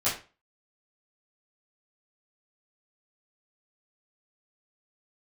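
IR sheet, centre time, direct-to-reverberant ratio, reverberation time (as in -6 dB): 31 ms, -12.5 dB, 0.35 s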